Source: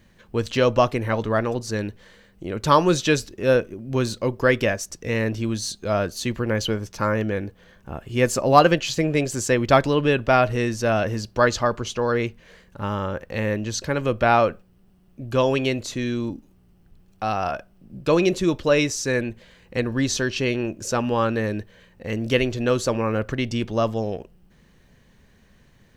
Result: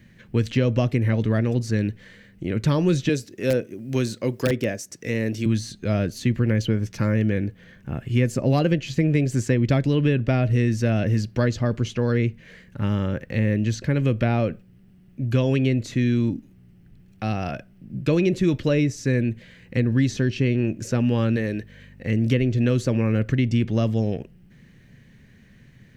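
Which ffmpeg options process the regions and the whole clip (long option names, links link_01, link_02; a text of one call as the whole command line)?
ffmpeg -i in.wav -filter_complex "[0:a]asettb=1/sr,asplit=3[link_01][link_02][link_03];[link_01]atrim=end=3.094[link_04];[link_02]atrim=start=3.09:end=5.46,asetpts=PTS-STARTPTS,afade=type=in:duration=0.004:curve=qsin,afade=type=out:start_time=2.366:duration=0.004:curve=qsin,highpass=86,bass=frequency=250:gain=-9,treble=frequency=4000:gain=10,aeval=exprs='(mod(2.37*val(0)+1,2)-1)/2.37':channel_layout=same[link_05];[link_03]atrim=start=5.456[link_06];[link_04][link_05]acrossfade=duration=0.004:curve1=hsin:curve2=qsin[link_07];[link_07][link_06]acrossfade=duration=0.004:curve1=qsin:curve2=hsin,asettb=1/sr,asplit=3[link_08][link_09][link_10];[link_08]atrim=end=21.364[link_11];[link_09]atrim=start=21.36:end=22.06,asetpts=PTS-STARTPTS,afade=type=in:duration=0.004:curve=qsin,afade=type=out:start_time=0.696:duration=0.004:curve=qsin,bass=frequency=250:gain=-9,treble=frequency=4000:gain=1,aeval=exprs='val(0)+0.00316*(sin(2*PI*50*n/s)+sin(2*PI*2*50*n/s)/2+sin(2*PI*3*50*n/s)/3+sin(2*PI*4*50*n/s)/4+sin(2*PI*5*50*n/s)/5)':channel_layout=same[link_12];[link_10]atrim=start=22.056[link_13];[link_11][link_12]acrossfade=duration=0.004:curve1=hsin:curve2=qsin[link_14];[link_14][link_13]acrossfade=duration=0.004:curve1=qsin:curve2=hsin,equalizer=frequency=125:width_type=o:width=1:gain=11,equalizer=frequency=250:width_type=o:width=1:gain=6,equalizer=frequency=1000:width_type=o:width=1:gain=-6,equalizer=frequency=2000:width_type=o:width=1:gain=9,acrossover=split=730|2300[link_15][link_16][link_17];[link_15]acompressor=threshold=-14dB:ratio=4[link_18];[link_16]acompressor=threshold=-37dB:ratio=4[link_19];[link_17]acompressor=threshold=-35dB:ratio=4[link_20];[link_18][link_19][link_20]amix=inputs=3:normalize=0,volume=-2dB" out.wav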